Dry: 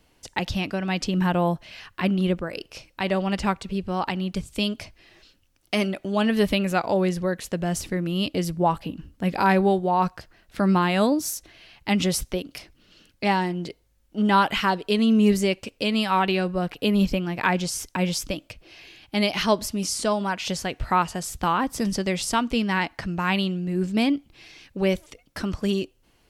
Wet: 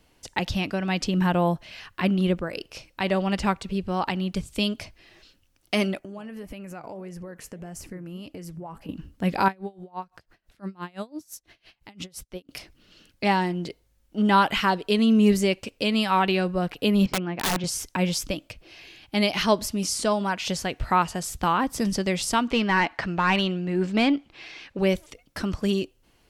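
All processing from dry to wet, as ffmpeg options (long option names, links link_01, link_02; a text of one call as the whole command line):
ffmpeg -i in.wav -filter_complex "[0:a]asettb=1/sr,asplit=3[link_01][link_02][link_03];[link_01]atrim=end=5.994[link_04];[link_02]atrim=start=5.99:end=8.89,asetpts=PTS-STARTPTS,afade=type=in:duration=0.004:curve=qsin,afade=type=out:start_time=2.896:duration=0.004:curve=qsin,equalizer=frequency=3700:width_type=o:width=0.45:gain=-14.5,acompressor=threshold=-29dB:ratio=16:attack=3.2:release=140:knee=1:detection=peak,flanger=delay=1.1:depth=5.9:regen=87:speed=1.7:shape=sinusoidal[link_05];[link_03]atrim=start=8.886[link_06];[link_04][link_05]acrossfade=duration=0.004:curve1=hsin:curve2=qsin[link_07];[link_07][link_06]acrossfade=duration=0.004:curve1=qsin:curve2=hsin,asettb=1/sr,asplit=3[link_08][link_09][link_10];[link_08]atrim=end=9.484[link_11];[link_09]atrim=start=9.48:end=12.49,asetpts=PTS-STARTPTS,afade=type=in:duration=0.004:curve=qsin,afade=type=out:start_time=3.006:duration=0.004:curve=qsin,acompressor=threshold=-44dB:ratio=1.5:attack=3.2:release=140:knee=1:detection=peak,aeval=exprs='val(0)*pow(10,-27*(0.5-0.5*cos(2*PI*5.9*n/s))/20)':channel_layout=same[link_12];[link_10]atrim=start=12.486[link_13];[link_11][link_12]acrossfade=duration=0.004:curve1=hsin:curve2=qsin[link_14];[link_14][link_13]acrossfade=duration=0.004:curve1=qsin:curve2=hsin,asettb=1/sr,asplit=3[link_15][link_16][link_17];[link_15]atrim=end=17.064[link_18];[link_16]atrim=start=17.06:end=17.64,asetpts=PTS-STARTPTS,afade=type=in:duration=0.004:curve=qsin,afade=type=out:start_time=0.576:duration=0.004:curve=qsin,highpass=170,lowpass=2500,aeval=exprs='(mod(8.41*val(0)+1,2)-1)/8.41':channel_layout=same[link_19];[link_17]atrim=start=17.636[link_20];[link_18][link_19]acrossfade=duration=0.004:curve1=hsin:curve2=qsin[link_21];[link_21][link_20]acrossfade=duration=0.004:curve1=qsin:curve2=hsin,asettb=1/sr,asplit=3[link_22][link_23][link_24];[link_22]atrim=end=22.484[link_25];[link_23]atrim=start=22.48:end=24.79,asetpts=PTS-STARTPTS,afade=type=in:duration=0.004:curve=qsin,afade=type=out:start_time=2.306:duration=0.004:curve=qsin,asplit=2[link_26][link_27];[link_27]highpass=frequency=720:poles=1,volume=14dB,asoftclip=type=tanh:threshold=-10.5dB[link_28];[link_26][link_28]amix=inputs=2:normalize=0,lowpass=frequency=2600:poles=1,volume=-6dB,highshelf=frequency=9900:gain=-9.5[link_29];[link_24]atrim=start=24.786[link_30];[link_25][link_29]acrossfade=duration=0.004:curve1=hsin:curve2=qsin[link_31];[link_31][link_30]acrossfade=duration=0.004:curve1=qsin:curve2=hsin" out.wav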